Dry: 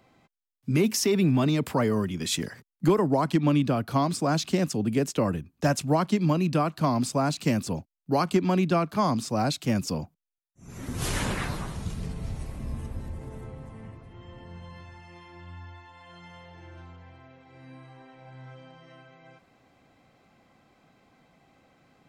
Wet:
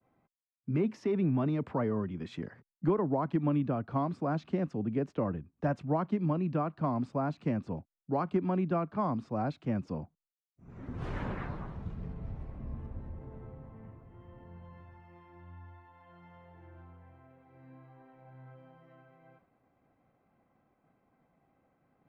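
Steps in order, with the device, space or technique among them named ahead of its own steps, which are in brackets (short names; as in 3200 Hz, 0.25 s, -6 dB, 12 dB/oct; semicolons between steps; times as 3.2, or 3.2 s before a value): hearing-loss simulation (LPF 1500 Hz 12 dB/oct; expander -58 dBFS); gain -6.5 dB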